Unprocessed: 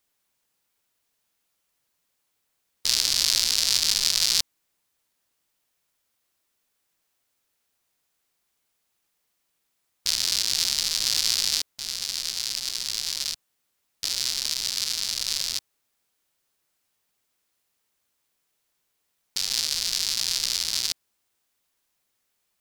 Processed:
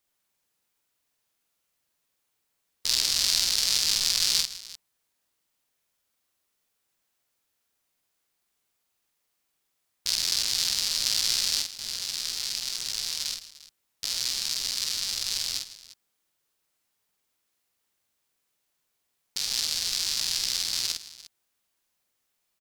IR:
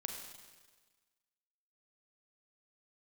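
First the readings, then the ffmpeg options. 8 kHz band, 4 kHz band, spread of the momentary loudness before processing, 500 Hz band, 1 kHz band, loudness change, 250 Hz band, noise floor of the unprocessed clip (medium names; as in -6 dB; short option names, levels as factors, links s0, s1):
-2.0 dB, -2.0 dB, 10 LU, -2.0 dB, -2.0 dB, -2.0 dB, -2.0 dB, -76 dBFS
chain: -af "aecho=1:1:48|159|348:0.631|0.168|0.133,volume=0.668"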